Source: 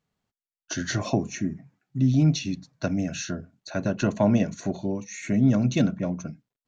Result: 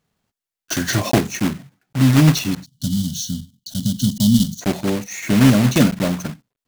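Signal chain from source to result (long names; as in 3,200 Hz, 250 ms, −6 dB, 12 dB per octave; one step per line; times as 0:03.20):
one scale factor per block 3 bits
gain on a spectral selection 0:02.65–0:04.62, 260–2,900 Hz −26 dB
level +7.5 dB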